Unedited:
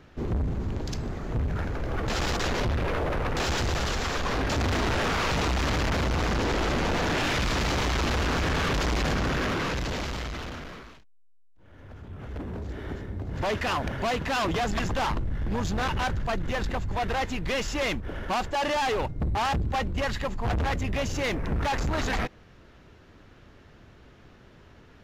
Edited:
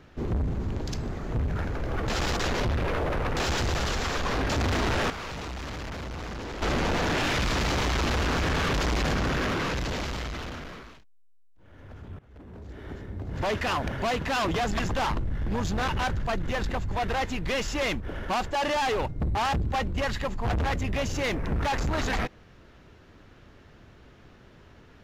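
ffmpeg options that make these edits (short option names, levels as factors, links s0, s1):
-filter_complex "[0:a]asplit=4[s0][s1][s2][s3];[s0]atrim=end=5.102[s4];[s1]atrim=start=5.098:end=6.622,asetpts=PTS-STARTPTS,volume=0.316[s5];[s2]atrim=start=6.618:end=12.19,asetpts=PTS-STARTPTS,afade=t=out:st=5.568:d=0.004:c=hsin:silence=0.0891251[s6];[s3]atrim=start=12.19,asetpts=PTS-STARTPTS,afade=t=in:d=1.23:silence=0.0891251[s7];[s4][s5]acrossfade=d=0.004:c1=hsin:c2=hsin[s8];[s6][s7]concat=n=2:v=0:a=1[s9];[s8][s9]acrossfade=d=0.004:c1=hsin:c2=hsin"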